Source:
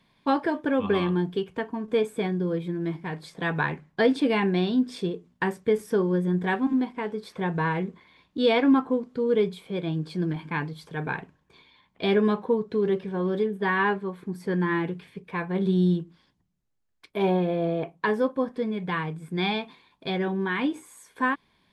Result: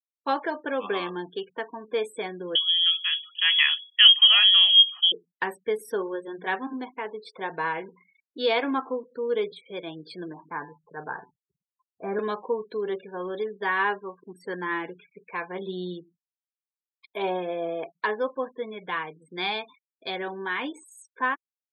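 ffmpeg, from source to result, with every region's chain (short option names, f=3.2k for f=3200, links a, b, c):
-filter_complex "[0:a]asettb=1/sr,asplit=3[a][b][c];[a]atrim=end=2.554[d];[b]atrim=start=2.55:end=5.12,asetpts=PTS-STARTPTS,afade=t=in:d=0.004:c=qsin,afade=t=out:st=2.566:d=0.004:c=qsin,lowpass=f=3k:t=q:w=0.5098,lowpass=f=3k:t=q:w=0.6013,lowpass=f=3k:t=q:w=0.9,lowpass=f=3k:t=q:w=2.563,afreqshift=-3500,highpass=f=710:p=1,highshelf=f=2.3k:g=9.5[e];[c]atrim=start=5.116[f];[d][e]acrossfade=d=0.004:c1=hsin:c2=qsin[g];[g][f]acrossfade=d=0.004:c1=qsin:c2=hsin,asettb=1/sr,asplit=3[h][i][j];[h]atrim=end=5.754[k];[i]atrim=start=5.75:end=9.52,asetpts=PTS-STARTPTS,afade=t=in:d=0.004:c=qsin,afade=t=out:st=3.766:d=0.004:c=qsin,bandreject=f=60:t=h:w=6,bandreject=f=120:t=h:w=6,bandreject=f=180:t=h:w=6,aecho=1:1:63|126|189:0.0668|0.0348|0.0181,atrim=end_sample=166257[l];[j]atrim=start=9.516[m];[k][l]acrossfade=d=0.004:c1=hsin:c2=qsin[n];[n][m]acrossfade=d=0.004:c1=qsin:c2=hsin,asettb=1/sr,asplit=3[o][p][q];[o]atrim=end=10.284[r];[p]atrim=start=10.28:end=12.19,asetpts=PTS-STARTPTS,afade=t=in:d=0.004:c=qsin,afade=t=out:st=1.906:d=0.004:c=qsin,lowpass=f=1.5k:w=0.5412,lowpass=f=1.5k:w=1.3066,bandreject=f=125:t=h:w=4,bandreject=f=250:t=h:w=4,bandreject=f=375:t=h:w=4,bandreject=f=500:t=h:w=4,bandreject=f=625:t=h:w=4,bandreject=f=750:t=h:w=4,bandreject=f=875:t=h:w=4,bandreject=f=1k:t=h:w=4,bandreject=f=1.125k:t=h:w=4,bandreject=f=1.25k:t=h:w=4,bandreject=f=1.375k:t=h:w=4,bandreject=f=1.5k:t=h:w=4,bandreject=f=1.625k:t=h:w=4,bandreject=f=1.75k:t=h:w=4,bandreject=f=1.875k:t=h:w=4,bandreject=f=2k:t=h:w=4,bandreject=f=2.125k:t=h:w=4,bandreject=f=2.25k:t=h:w=4,bandreject=f=2.375k:t=h:w=4,bandreject=f=2.5k:t=h:w=4,bandreject=f=2.625k:t=h:w=4,bandreject=f=2.75k:t=h:w=4,bandreject=f=2.875k:t=h:w=4,bandreject=f=3k:t=h:w=4,bandreject=f=3.125k:t=h:w=4,bandreject=f=3.25k:t=h:w=4,bandreject=f=3.375k:t=h:w=4,bandreject=f=3.5k:t=h:w=4,bandreject=f=3.625k:t=h:w=4,bandreject=f=3.75k:t=h:w=4,bandreject=f=3.875k:t=h:w=4,bandreject=f=4k:t=h:w=4,bandreject=f=4.125k:t=h:w=4,bandreject=f=4.25k:t=h:w=4,bandreject=f=4.375k:t=h:w=4,bandreject=f=4.5k:t=h:w=4,bandreject=f=4.625k:t=h:w=4,bandreject=f=4.75k:t=h:w=4,asubboost=boost=6.5:cutoff=170[s];[q]atrim=start=12.186[t];[r][s]acrossfade=d=0.004:c1=hsin:c2=qsin[u];[u][t]acrossfade=d=0.004:c1=qsin:c2=hsin,highshelf=f=7.5k:g=6,afftfilt=real='re*gte(hypot(re,im),0.00794)':imag='im*gte(hypot(re,im),0.00794)':win_size=1024:overlap=0.75,highpass=470"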